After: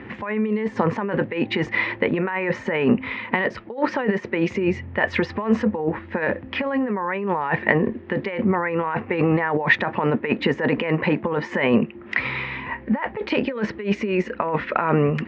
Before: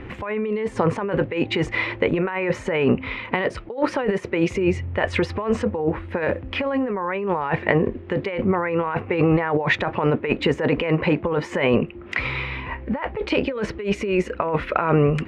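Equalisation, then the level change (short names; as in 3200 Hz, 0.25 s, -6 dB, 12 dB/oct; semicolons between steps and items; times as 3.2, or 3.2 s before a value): speaker cabinet 110–5900 Hz, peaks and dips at 220 Hz +8 dB, 920 Hz +4 dB, 1800 Hz +7 dB; -2.0 dB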